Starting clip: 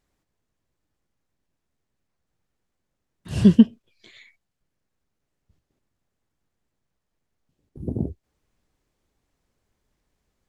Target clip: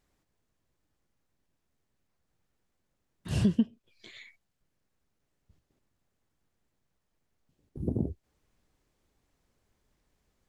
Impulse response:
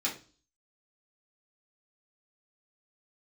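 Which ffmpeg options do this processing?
-af "acompressor=threshold=0.0501:ratio=3"

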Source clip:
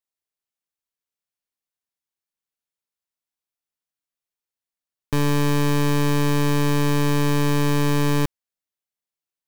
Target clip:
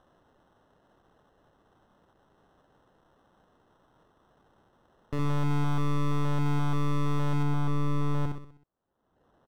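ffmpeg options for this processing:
-af "alimiter=limit=0.075:level=0:latency=1,aecho=1:1:63|126|189|252|315|378:0.631|0.297|0.139|0.0655|0.0308|0.0145,acompressor=mode=upward:threshold=0.02:ratio=2.5,acrusher=samples=19:mix=1:aa=0.000001,asetnsamples=n=441:p=0,asendcmd='7.43 lowpass f 1100',lowpass=f=1800:p=1,volume=0.531"

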